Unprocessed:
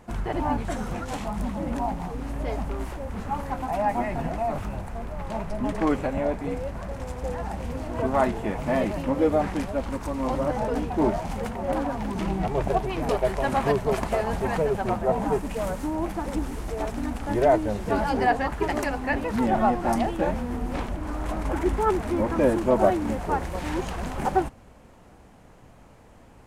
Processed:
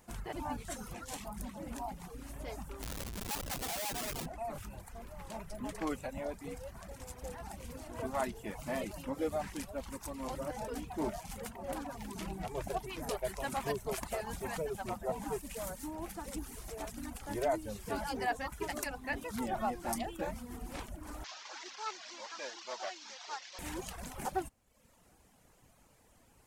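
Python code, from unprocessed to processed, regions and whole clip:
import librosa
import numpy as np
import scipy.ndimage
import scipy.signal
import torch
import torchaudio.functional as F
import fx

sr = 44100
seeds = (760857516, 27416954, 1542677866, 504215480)

y = fx.chain(x, sr, fx.curve_eq(hz=(290.0, 1700.0, 7500.0, 11000.0), db=(0, 3, 8, -3)),
    fx.schmitt(flips_db=-32.5),
    fx.doppler_dist(depth_ms=0.57), at=(2.82, 4.26))
y = fx.chain(y, sr, fx.delta_mod(bps=32000, step_db=-31.5),
    fx.highpass(hz=1000.0, slope=12), at=(21.24, 23.59))
y = fx.dereverb_blind(y, sr, rt60_s=0.78)
y = scipy.signal.lfilter([1.0, -0.8], [1.0], y)
y = F.gain(torch.from_numpy(y), 1.0).numpy()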